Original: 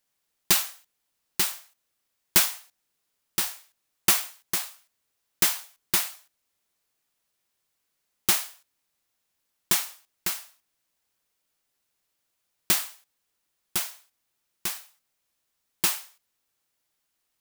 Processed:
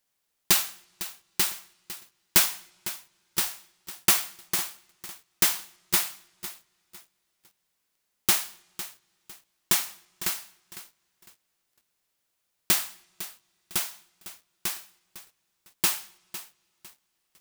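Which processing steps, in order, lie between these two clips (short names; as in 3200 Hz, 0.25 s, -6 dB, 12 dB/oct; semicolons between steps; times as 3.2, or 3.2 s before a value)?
on a send at -22 dB: reverb, pre-delay 55 ms; on the sum: lo-fi delay 0.504 s, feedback 35%, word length 7-bit, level -14 dB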